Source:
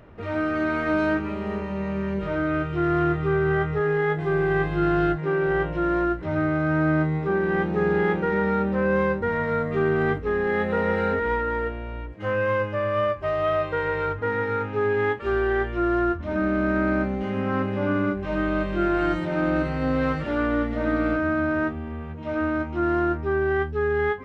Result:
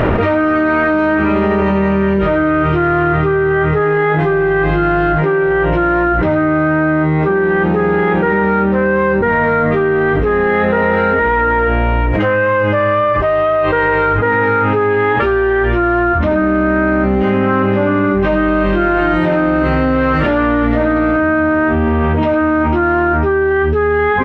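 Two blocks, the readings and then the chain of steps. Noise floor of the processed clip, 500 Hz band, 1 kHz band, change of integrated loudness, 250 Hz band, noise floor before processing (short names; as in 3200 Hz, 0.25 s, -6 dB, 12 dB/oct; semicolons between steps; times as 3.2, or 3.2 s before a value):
-14 dBFS, +10.5 dB, +12.5 dB, +10.5 dB, +10.5 dB, -33 dBFS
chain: tone controls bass -3 dB, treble -10 dB; doubler 16 ms -12 dB; on a send: flutter echo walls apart 10.1 m, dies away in 0.22 s; on the sum: fast leveller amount 100%; gain +6 dB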